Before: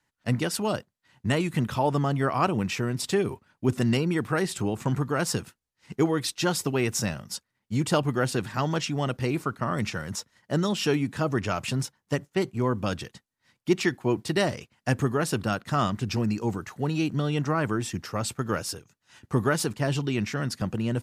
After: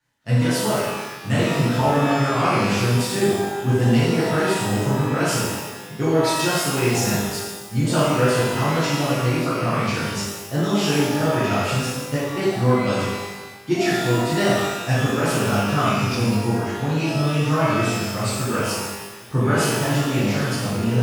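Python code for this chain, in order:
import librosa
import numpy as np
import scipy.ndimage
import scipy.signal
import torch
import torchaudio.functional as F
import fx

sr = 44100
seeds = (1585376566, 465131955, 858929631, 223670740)

y = fx.doubler(x, sr, ms=40.0, db=-11.5)
y = fx.rev_shimmer(y, sr, seeds[0], rt60_s=1.2, semitones=12, shimmer_db=-8, drr_db=-10.0)
y = y * 10.0 ** (-5.0 / 20.0)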